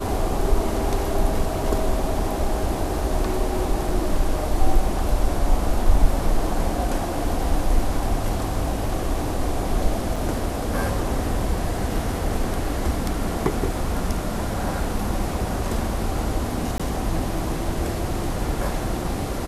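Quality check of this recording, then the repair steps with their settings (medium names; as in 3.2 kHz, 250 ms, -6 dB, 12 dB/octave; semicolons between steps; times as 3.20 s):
10.16 s: dropout 4.8 ms
16.78–16.80 s: dropout 16 ms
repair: interpolate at 10.16 s, 4.8 ms; interpolate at 16.78 s, 16 ms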